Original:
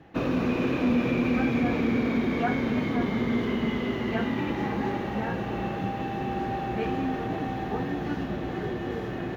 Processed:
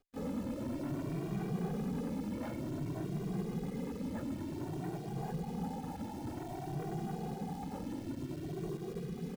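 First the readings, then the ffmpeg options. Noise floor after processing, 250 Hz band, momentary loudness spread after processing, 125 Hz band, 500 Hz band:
−44 dBFS, −12.0 dB, 4 LU, −6.5 dB, −12.5 dB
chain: -filter_complex "[0:a]bandreject=frequency=50:width_type=h:width=6,bandreject=frequency=100:width_type=h:width=6,bandreject=frequency=150:width_type=h:width=6,acompressor=mode=upward:threshold=-35dB:ratio=2.5,afftfilt=real='re*gte(hypot(re,im),0.0794)':imag='im*gte(hypot(re,im),0.0794)':win_size=1024:overlap=0.75,afftfilt=real='hypot(re,im)*cos(2*PI*random(0))':imag='hypot(re,im)*sin(2*PI*random(1))':win_size=512:overlap=0.75,lowpass=1200,asoftclip=type=hard:threshold=-34dB,adynamicequalizer=threshold=0.00178:dfrequency=160:dqfactor=2:tfrequency=160:tqfactor=2:attack=5:release=100:ratio=0.375:range=4:mode=boostabove:tftype=bell,asplit=4[link_01][link_02][link_03][link_04];[link_02]adelay=215,afreqshift=53,volume=-20.5dB[link_05];[link_03]adelay=430,afreqshift=106,volume=-29.9dB[link_06];[link_04]adelay=645,afreqshift=159,volume=-39.2dB[link_07];[link_01][link_05][link_06][link_07]amix=inputs=4:normalize=0,acrusher=bits=9:dc=4:mix=0:aa=0.000001,asplit=2[link_08][link_09];[link_09]adelay=2,afreqshift=0.54[link_10];[link_08][link_10]amix=inputs=2:normalize=1,volume=-1dB"

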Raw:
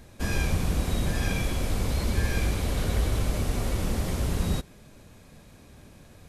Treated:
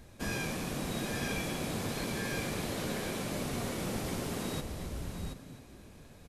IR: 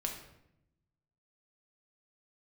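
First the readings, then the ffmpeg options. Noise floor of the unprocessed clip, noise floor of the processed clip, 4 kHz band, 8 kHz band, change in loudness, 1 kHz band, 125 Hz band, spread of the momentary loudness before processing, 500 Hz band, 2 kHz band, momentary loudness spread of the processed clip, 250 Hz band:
−52 dBFS, −54 dBFS, −3.0 dB, −3.0 dB, −7.5 dB, −3.0 dB, −11.0 dB, 2 LU, −3.0 dB, −3.0 dB, 10 LU, −4.0 dB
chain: -filter_complex "[0:a]asplit=2[link_01][link_02];[link_02]aecho=0:1:728:0.398[link_03];[link_01][link_03]amix=inputs=2:normalize=0,afftfilt=real='re*lt(hypot(re,im),0.316)':imag='im*lt(hypot(re,im),0.316)':win_size=1024:overlap=0.75,asplit=2[link_04][link_05];[link_05]asplit=4[link_06][link_07][link_08][link_09];[link_06]adelay=260,afreqshift=91,volume=-13dB[link_10];[link_07]adelay=520,afreqshift=182,volume=-20.5dB[link_11];[link_08]adelay=780,afreqshift=273,volume=-28.1dB[link_12];[link_09]adelay=1040,afreqshift=364,volume=-35.6dB[link_13];[link_10][link_11][link_12][link_13]amix=inputs=4:normalize=0[link_14];[link_04][link_14]amix=inputs=2:normalize=0,volume=-4dB"

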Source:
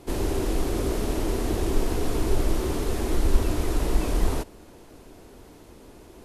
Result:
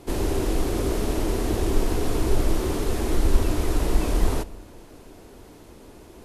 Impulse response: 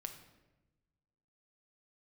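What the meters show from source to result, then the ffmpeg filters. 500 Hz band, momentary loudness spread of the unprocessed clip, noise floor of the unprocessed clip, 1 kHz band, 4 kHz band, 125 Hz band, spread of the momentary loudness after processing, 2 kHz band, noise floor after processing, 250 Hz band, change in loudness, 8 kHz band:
+1.5 dB, 2 LU, −49 dBFS, +1.5 dB, +1.5 dB, +2.0 dB, 3 LU, +1.5 dB, −47 dBFS, +1.5 dB, +1.5 dB, +1.5 dB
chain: -filter_complex "[0:a]asplit=2[link_01][link_02];[1:a]atrim=start_sample=2205,afade=type=out:start_time=0.41:duration=0.01,atrim=end_sample=18522,asetrate=27783,aresample=44100[link_03];[link_02][link_03]afir=irnorm=-1:irlink=0,volume=-12dB[link_04];[link_01][link_04]amix=inputs=2:normalize=0"

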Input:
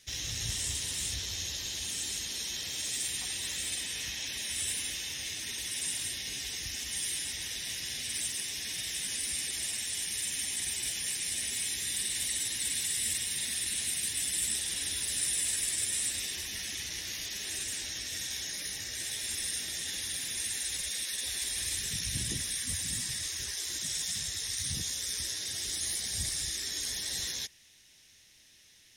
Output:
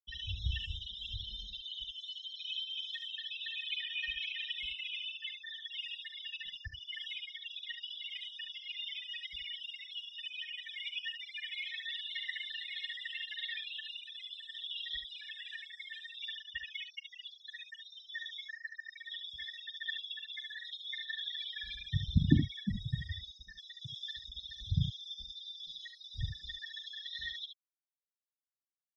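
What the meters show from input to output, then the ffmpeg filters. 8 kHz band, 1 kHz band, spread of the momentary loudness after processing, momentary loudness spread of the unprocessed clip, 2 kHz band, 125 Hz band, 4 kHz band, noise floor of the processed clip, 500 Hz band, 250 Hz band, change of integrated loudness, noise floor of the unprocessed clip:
below −35 dB, below −25 dB, 8 LU, 5 LU, −2.0 dB, +6.5 dB, −4.0 dB, below −85 dBFS, −8.0 dB, +7.5 dB, −7.5 dB, −60 dBFS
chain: -filter_complex "[0:a]equalizer=frequency=140:width=0.48:gain=-5,afftfilt=real='re*gte(hypot(re,im),0.0355)':imag='im*gte(hypot(re,im),0.0355)':win_size=1024:overlap=0.75,acrossover=split=890[link_01][link_02];[link_01]acontrast=22[link_03];[link_02]alimiter=level_in=2.5dB:limit=-24dB:level=0:latency=1:release=179,volume=-2.5dB[link_04];[link_03][link_04]amix=inputs=2:normalize=0,highpass=frequency=160:width_type=q:width=0.5412,highpass=frequency=160:width_type=q:width=1.307,lowpass=frequency=3000:width_type=q:width=0.5176,lowpass=frequency=3000:width_type=q:width=0.7071,lowpass=frequency=3000:width_type=q:width=1.932,afreqshift=-51,asplit=2[link_05][link_06];[link_06]adynamicsmooth=sensitivity=2:basefreq=810,volume=-0.5dB[link_07];[link_05][link_07]amix=inputs=2:normalize=0,aecho=1:1:42|72:0.126|0.398,volume=13.5dB"

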